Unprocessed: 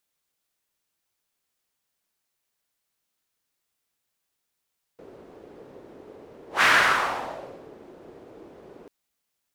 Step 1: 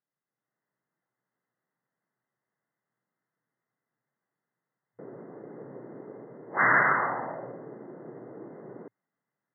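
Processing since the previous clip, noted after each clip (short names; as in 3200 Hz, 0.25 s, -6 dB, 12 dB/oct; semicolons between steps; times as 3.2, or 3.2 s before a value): FFT band-pass 110–2100 Hz; AGC gain up to 9 dB; low shelf 180 Hz +11 dB; gain -8.5 dB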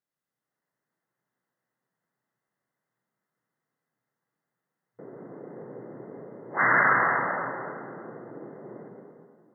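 plate-style reverb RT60 2.1 s, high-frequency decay 0.65×, pre-delay 0.11 s, DRR 2.5 dB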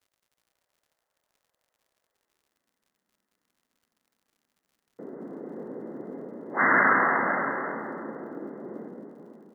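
high-pass sweep 570 Hz -> 230 Hz, 2–2.69; crackle 84/s -56 dBFS; echo 0.554 s -11 dB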